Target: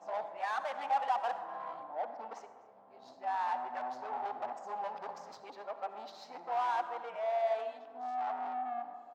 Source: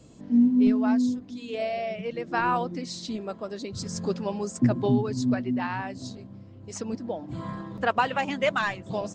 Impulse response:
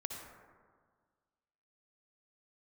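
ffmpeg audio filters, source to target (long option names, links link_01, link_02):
-filter_complex "[0:a]areverse,alimiter=limit=-18.5dB:level=0:latency=1:release=11,asoftclip=type=tanh:threshold=-31.5dB,adynamicsmooth=sensitivity=4:basefreq=2000,highpass=frequency=790:width_type=q:width=4.9,asplit=2[link_01][link_02];[link_02]adelay=250.7,volume=-20dB,highshelf=frequency=4000:gain=-5.64[link_03];[link_01][link_03]amix=inputs=2:normalize=0,asplit=2[link_04][link_05];[1:a]atrim=start_sample=2205[link_06];[link_05][link_06]afir=irnorm=-1:irlink=0,volume=-1dB[link_07];[link_04][link_07]amix=inputs=2:normalize=0,volume=-9dB"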